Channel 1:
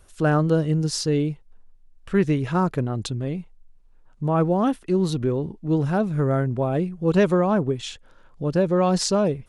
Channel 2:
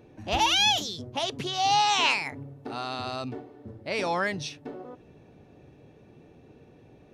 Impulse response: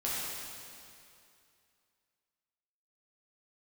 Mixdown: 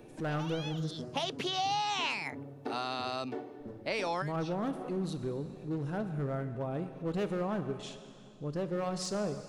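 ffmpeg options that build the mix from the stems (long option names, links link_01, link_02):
-filter_complex "[0:a]volume=16dB,asoftclip=hard,volume=-16dB,volume=-14.5dB,asplit=3[link_01][link_02][link_03];[link_01]atrim=end=0.91,asetpts=PTS-STARTPTS,afade=type=out:start_time=0.906:duration=0.004:curve=hsin[link_04];[link_02]atrim=start=0.91:end=3.6,asetpts=PTS-STARTPTS,volume=0[link_05];[link_03]atrim=start=3.6,asetpts=PTS-STARTPTS,afade=type=in:duration=0.004:curve=hsin[link_06];[link_04][link_05][link_06]concat=n=3:v=0:a=1,asplit=3[link_07][link_08][link_09];[link_08]volume=-12.5dB[link_10];[1:a]highpass=120,acrossover=split=270|4600[link_11][link_12][link_13];[link_11]acompressor=threshold=-50dB:ratio=4[link_14];[link_12]acompressor=threshold=-34dB:ratio=4[link_15];[link_13]acompressor=threshold=-51dB:ratio=4[link_16];[link_14][link_15][link_16]amix=inputs=3:normalize=0,volume=2dB[link_17];[link_09]apad=whole_len=314491[link_18];[link_17][link_18]sidechaincompress=threshold=-47dB:ratio=10:attack=6:release=128[link_19];[2:a]atrim=start_sample=2205[link_20];[link_10][link_20]afir=irnorm=-1:irlink=0[link_21];[link_07][link_19][link_21]amix=inputs=3:normalize=0"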